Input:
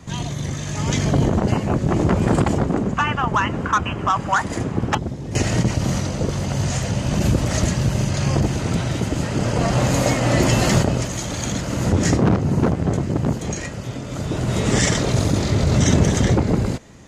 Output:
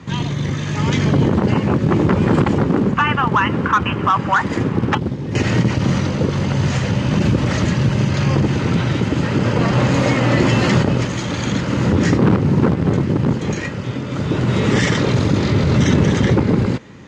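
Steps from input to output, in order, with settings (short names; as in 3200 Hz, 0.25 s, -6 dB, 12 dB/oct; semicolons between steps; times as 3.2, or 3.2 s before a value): bell 680 Hz -9.5 dB 0.36 oct; in parallel at +3 dB: limiter -14 dBFS, peak gain reduction 10 dB; on the sum: companded quantiser 6-bit; BPF 100–3600 Hz; gain -1 dB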